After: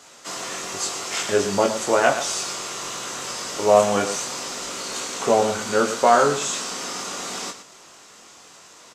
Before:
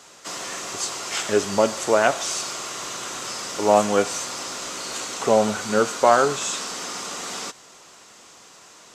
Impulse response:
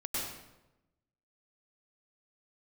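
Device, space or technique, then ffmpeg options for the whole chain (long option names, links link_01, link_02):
slapback doubling: -filter_complex "[0:a]asplit=3[link_01][link_02][link_03];[link_02]adelay=21,volume=-3.5dB[link_04];[link_03]adelay=117,volume=-10dB[link_05];[link_01][link_04][link_05]amix=inputs=3:normalize=0,volume=-1dB"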